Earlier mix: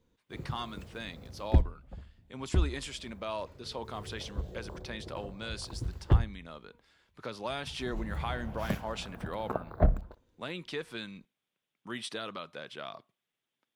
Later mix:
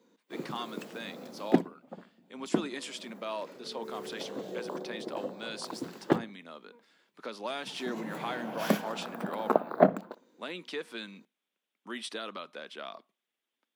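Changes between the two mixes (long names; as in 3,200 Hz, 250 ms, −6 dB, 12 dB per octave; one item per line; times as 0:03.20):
background +9.5 dB
master: add Butterworth high-pass 200 Hz 36 dB per octave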